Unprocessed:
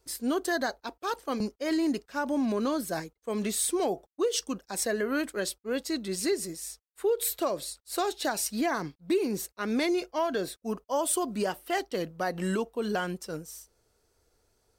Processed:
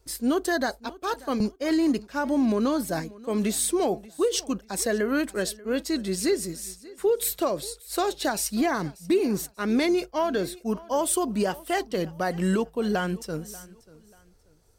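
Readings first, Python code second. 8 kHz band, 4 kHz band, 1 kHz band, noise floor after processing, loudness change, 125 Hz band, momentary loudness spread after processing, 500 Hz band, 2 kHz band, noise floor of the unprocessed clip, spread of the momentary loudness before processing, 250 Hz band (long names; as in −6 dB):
+2.5 dB, +2.5 dB, +3.0 dB, −57 dBFS, +4.0 dB, +6.5 dB, 7 LU, +3.5 dB, +2.5 dB, −77 dBFS, 7 LU, +5.0 dB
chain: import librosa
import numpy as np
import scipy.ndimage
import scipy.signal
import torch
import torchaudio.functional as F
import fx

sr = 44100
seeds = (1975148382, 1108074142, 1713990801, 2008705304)

p1 = fx.low_shelf(x, sr, hz=170.0, db=9.0)
p2 = p1 + fx.echo_feedback(p1, sr, ms=587, feedback_pct=30, wet_db=-21, dry=0)
y = p2 * librosa.db_to_amplitude(2.5)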